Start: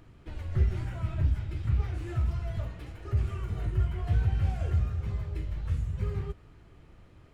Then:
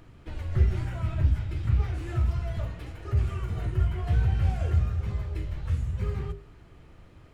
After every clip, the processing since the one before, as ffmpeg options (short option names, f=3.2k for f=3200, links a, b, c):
-af "bandreject=f=50:t=h:w=6,bandreject=f=100:t=h:w=6,bandreject=f=150:t=h:w=6,bandreject=f=200:t=h:w=6,bandreject=f=250:t=h:w=6,bandreject=f=300:t=h:w=6,bandreject=f=350:t=h:w=6,bandreject=f=400:t=h:w=6,volume=3.5dB"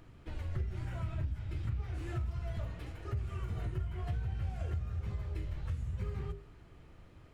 -af "acompressor=threshold=-28dB:ratio=6,volume=-4.5dB"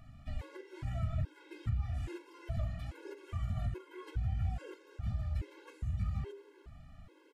-af "aecho=1:1:374:0.141,aresample=32000,aresample=44100,afftfilt=real='re*gt(sin(2*PI*1.2*pts/sr)*(1-2*mod(floor(b*sr/1024/280),2)),0)':imag='im*gt(sin(2*PI*1.2*pts/sr)*(1-2*mod(floor(b*sr/1024/280),2)),0)':win_size=1024:overlap=0.75,volume=2.5dB"